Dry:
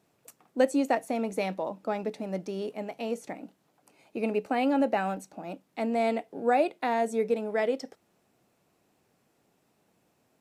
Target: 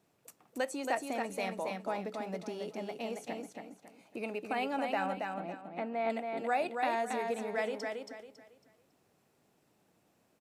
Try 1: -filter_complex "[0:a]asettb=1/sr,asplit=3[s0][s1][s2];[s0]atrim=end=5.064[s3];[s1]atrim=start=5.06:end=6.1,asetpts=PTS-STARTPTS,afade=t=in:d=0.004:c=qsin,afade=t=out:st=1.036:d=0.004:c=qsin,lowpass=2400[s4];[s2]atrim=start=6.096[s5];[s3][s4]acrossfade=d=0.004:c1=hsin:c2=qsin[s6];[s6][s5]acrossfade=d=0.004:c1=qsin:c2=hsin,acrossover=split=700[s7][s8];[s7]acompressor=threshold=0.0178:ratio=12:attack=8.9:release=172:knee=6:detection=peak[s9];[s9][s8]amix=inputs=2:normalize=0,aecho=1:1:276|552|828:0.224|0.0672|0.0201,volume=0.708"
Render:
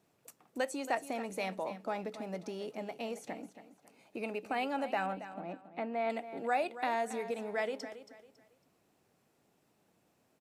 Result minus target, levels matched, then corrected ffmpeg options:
echo-to-direct -8.5 dB
-filter_complex "[0:a]asettb=1/sr,asplit=3[s0][s1][s2];[s0]atrim=end=5.064[s3];[s1]atrim=start=5.06:end=6.1,asetpts=PTS-STARTPTS,afade=t=in:d=0.004:c=qsin,afade=t=out:st=1.036:d=0.004:c=qsin,lowpass=2400[s4];[s2]atrim=start=6.096[s5];[s3][s4]acrossfade=d=0.004:c1=hsin:c2=qsin[s6];[s6][s5]acrossfade=d=0.004:c1=qsin:c2=hsin,acrossover=split=700[s7][s8];[s7]acompressor=threshold=0.0178:ratio=12:attack=8.9:release=172:knee=6:detection=peak[s9];[s9][s8]amix=inputs=2:normalize=0,aecho=1:1:276|552|828|1104:0.596|0.179|0.0536|0.0161,volume=0.708"

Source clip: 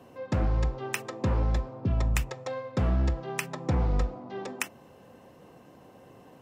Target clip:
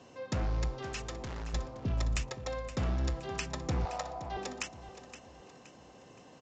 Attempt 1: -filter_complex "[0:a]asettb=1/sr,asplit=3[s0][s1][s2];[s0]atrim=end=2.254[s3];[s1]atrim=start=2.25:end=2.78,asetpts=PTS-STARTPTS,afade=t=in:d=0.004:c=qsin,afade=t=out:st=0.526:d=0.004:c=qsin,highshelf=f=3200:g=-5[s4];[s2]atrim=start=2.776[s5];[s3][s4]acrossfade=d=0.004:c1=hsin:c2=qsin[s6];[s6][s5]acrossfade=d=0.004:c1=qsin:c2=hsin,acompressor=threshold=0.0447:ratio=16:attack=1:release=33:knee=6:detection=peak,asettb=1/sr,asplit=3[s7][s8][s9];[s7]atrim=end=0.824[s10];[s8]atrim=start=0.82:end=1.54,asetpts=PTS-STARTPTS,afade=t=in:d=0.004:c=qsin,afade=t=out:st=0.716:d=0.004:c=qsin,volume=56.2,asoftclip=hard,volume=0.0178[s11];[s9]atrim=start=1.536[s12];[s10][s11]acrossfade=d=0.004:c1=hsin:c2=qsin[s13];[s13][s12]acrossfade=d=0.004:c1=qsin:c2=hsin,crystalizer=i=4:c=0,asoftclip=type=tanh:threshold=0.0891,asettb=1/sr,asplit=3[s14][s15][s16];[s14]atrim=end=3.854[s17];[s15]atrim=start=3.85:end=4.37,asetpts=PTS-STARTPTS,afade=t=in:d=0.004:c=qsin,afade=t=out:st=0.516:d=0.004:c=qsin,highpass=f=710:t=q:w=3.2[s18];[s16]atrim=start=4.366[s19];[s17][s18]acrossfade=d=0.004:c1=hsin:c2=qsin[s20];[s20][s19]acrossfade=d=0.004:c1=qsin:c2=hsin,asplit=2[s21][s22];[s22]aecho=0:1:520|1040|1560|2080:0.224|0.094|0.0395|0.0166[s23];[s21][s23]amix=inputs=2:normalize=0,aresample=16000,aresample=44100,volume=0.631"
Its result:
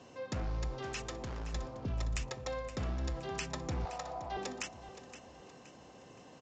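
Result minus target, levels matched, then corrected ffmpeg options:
compression: peak gain reduction +9.5 dB
-filter_complex "[0:a]asettb=1/sr,asplit=3[s0][s1][s2];[s0]atrim=end=0.824[s3];[s1]atrim=start=0.82:end=1.54,asetpts=PTS-STARTPTS,afade=t=in:d=0.004:c=qsin,afade=t=out:st=0.716:d=0.004:c=qsin,volume=56.2,asoftclip=hard,volume=0.0178[s4];[s2]atrim=start=1.536[s5];[s3][s4]acrossfade=d=0.004:c1=hsin:c2=qsin[s6];[s6][s5]acrossfade=d=0.004:c1=qsin:c2=hsin,asettb=1/sr,asplit=3[s7][s8][s9];[s7]atrim=end=2.254[s10];[s8]atrim=start=2.25:end=2.78,asetpts=PTS-STARTPTS,afade=t=in:d=0.004:c=qsin,afade=t=out:st=0.526:d=0.004:c=qsin,highshelf=f=3200:g=-5[s11];[s9]atrim=start=2.776[s12];[s10][s11]acrossfade=d=0.004:c1=hsin:c2=qsin[s13];[s13][s12]acrossfade=d=0.004:c1=qsin:c2=hsin,crystalizer=i=4:c=0,asoftclip=type=tanh:threshold=0.0891,asettb=1/sr,asplit=3[s14][s15][s16];[s14]atrim=end=3.854[s17];[s15]atrim=start=3.85:end=4.37,asetpts=PTS-STARTPTS,afade=t=in:d=0.004:c=qsin,afade=t=out:st=0.516:d=0.004:c=qsin,highpass=f=710:t=q:w=3.2[s18];[s16]atrim=start=4.366[s19];[s17][s18]acrossfade=d=0.004:c1=hsin:c2=qsin[s20];[s20][s19]acrossfade=d=0.004:c1=qsin:c2=hsin,asplit=2[s21][s22];[s22]aecho=0:1:520|1040|1560|2080:0.224|0.094|0.0395|0.0166[s23];[s21][s23]amix=inputs=2:normalize=0,aresample=16000,aresample=44100,volume=0.631"

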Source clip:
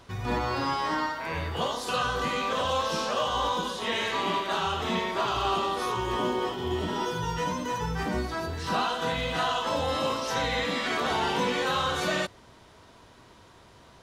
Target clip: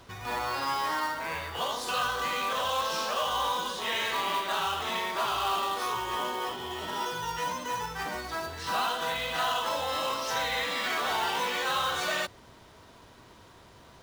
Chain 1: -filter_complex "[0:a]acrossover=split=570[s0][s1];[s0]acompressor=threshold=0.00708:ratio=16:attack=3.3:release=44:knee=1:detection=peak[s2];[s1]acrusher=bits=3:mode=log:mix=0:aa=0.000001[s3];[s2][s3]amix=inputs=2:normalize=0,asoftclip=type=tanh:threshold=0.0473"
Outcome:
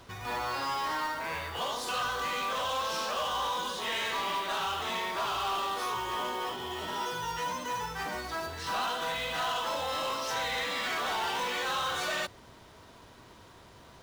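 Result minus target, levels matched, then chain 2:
saturation: distortion +15 dB
-filter_complex "[0:a]acrossover=split=570[s0][s1];[s0]acompressor=threshold=0.00708:ratio=16:attack=3.3:release=44:knee=1:detection=peak[s2];[s1]acrusher=bits=3:mode=log:mix=0:aa=0.000001[s3];[s2][s3]amix=inputs=2:normalize=0,asoftclip=type=tanh:threshold=0.158"

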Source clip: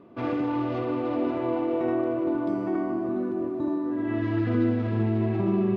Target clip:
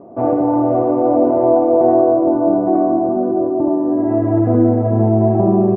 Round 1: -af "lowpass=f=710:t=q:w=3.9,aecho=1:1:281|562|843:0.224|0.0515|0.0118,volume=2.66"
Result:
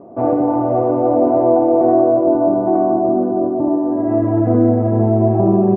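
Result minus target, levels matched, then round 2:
echo 80 ms late
-af "lowpass=f=710:t=q:w=3.9,aecho=1:1:201|402|603:0.224|0.0515|0.0118,volume=2.66"

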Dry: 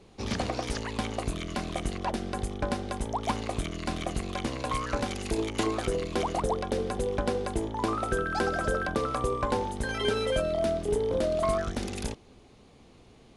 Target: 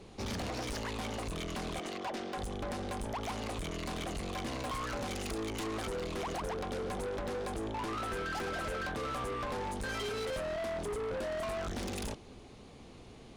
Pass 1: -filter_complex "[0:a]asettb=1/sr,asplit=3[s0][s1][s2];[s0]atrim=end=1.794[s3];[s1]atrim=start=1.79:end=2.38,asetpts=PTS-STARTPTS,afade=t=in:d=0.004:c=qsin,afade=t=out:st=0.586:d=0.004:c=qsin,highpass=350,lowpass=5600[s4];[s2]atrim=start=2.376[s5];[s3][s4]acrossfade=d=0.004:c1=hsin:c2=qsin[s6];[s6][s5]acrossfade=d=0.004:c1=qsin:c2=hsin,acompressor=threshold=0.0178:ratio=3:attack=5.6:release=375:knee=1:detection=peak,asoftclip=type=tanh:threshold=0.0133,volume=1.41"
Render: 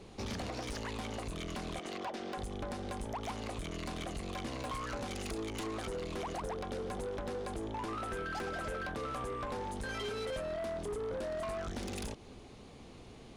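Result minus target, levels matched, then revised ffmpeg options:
compression: peak gain reduction +5.5 dB
-filter_complex "[0:a]asettb=1/sr,asplit=3[s0][s1][s2];[s0]atrim=end=1.794[s3];[s1]atrim=start=1.79:end=2.38,asetpts=PTS-STARTPTS,afade=t=in:d=0.004:c=qsin,afade=t=out:st=0.586:d=0.004:c=qsin,highpass=350,lowpass=5600[s4];[s2]atrim=start=2.376[s5];[s3][s4]acrossfade=d=0.004:c1=hsin:c2=qsin[s6];[s6][s5]acrossfade=d=0.004:c1=qsin:c2=hsin,acompressor=threshold=0.0473:ratio=3:attack=5.6:release=375:knee=1:detection=peak,asoftclip=type=tanh:threshold=0.0133,volume=1.41"

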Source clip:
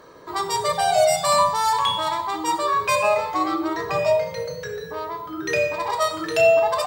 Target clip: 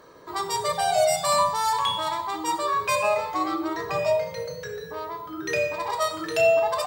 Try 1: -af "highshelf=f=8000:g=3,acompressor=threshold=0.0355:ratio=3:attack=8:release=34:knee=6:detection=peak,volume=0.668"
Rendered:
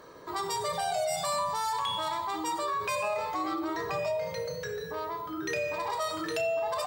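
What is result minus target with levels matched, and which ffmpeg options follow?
compression: peak gain reduction +12 dB
-af "highshelf=f=8000:g=3,volume=0.668"

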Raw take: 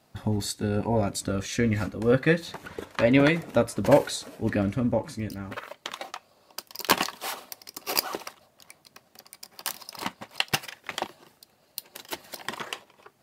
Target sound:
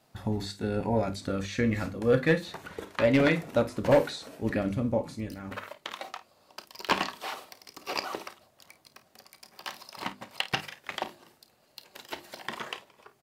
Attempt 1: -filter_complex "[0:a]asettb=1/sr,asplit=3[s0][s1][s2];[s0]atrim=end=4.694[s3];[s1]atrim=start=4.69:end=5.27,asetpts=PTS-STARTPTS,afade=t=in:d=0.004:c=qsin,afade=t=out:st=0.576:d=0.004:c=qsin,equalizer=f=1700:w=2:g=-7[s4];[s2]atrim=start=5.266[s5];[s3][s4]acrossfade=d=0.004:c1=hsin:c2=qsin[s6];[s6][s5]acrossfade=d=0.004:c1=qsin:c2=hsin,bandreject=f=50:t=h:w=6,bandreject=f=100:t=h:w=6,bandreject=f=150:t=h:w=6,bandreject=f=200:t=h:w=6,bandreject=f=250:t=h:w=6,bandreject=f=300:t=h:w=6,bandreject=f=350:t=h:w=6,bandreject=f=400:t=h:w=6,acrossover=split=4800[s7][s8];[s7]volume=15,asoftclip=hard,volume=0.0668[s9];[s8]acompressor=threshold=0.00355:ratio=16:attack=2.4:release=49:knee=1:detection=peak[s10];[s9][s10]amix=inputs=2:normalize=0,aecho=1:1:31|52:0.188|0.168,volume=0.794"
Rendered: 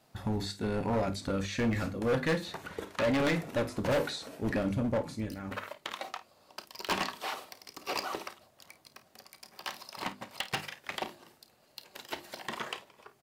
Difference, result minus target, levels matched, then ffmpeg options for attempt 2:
overload inside the chain: distortion +12 dB
-filter_complex "[0:a]asettb=1/sr,asplit=3[s0][s1][s2];[s0]atrim=end=4.694[s3];[s1]atrim=start=4.69:end=5.27,asetpts=PTS-STARTPTS,afade=t=in:d=0.004:c=qsin,afade=t=out:st=0.576:d=0.004:c=qsin,equalizer=f=1700:w=2:g=-7[s4];[s2]atrim=start=5.266[s5];[s3][s4]acrossfade=d=0.004:c1=hsin:c2=qsin[s6];[s6][s5]acrossfade=d=0.004:c1=qsin:c2=hsin,bandreject=f=50:t=h:w=6,bandreject=f=100:t=h:w=6,bandreject=f=150:t=h:w=6,bandreject=f=200:t=h:w=6,bandreject=f=250:t=h:w=6,bandreject=f=300:t=h:w=6,bandreject=f=350:t=h:w=6,bandreject=f=400:t=h:w=6,acrossover=split=4800[s7][s8];[s7]volume=4.22,asoftclip=hard,volume=0.237[s9];[s8]acompressor=threshold=0.00355:ratio=16:attack=2.4:release=49:knee=1:detection=peak[s10];[s9][s10]amix=inputs=2:normalize=0,aecho=1:1:31|52:0.188|0.168,volume=0.794"

